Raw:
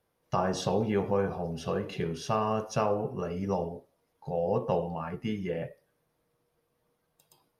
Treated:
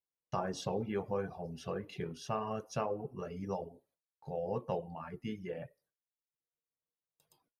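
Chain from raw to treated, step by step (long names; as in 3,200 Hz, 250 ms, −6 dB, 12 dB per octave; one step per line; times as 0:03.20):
noise gate with hold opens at −58 dBFS
reverb reduction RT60 0.64 s
level −7 dB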